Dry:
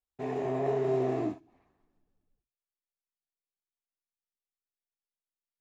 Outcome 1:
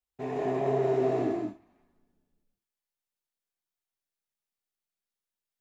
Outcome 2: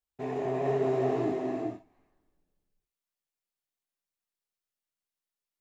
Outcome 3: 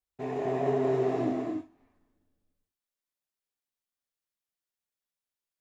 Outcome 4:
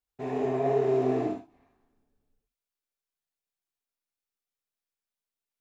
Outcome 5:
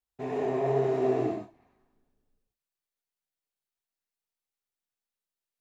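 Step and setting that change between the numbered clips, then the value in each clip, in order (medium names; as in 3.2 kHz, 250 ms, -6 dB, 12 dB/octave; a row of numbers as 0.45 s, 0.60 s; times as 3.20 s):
gated-style reverb, gate: 210 ms, 470 ms, 310 ms, 90 ms, 140 ms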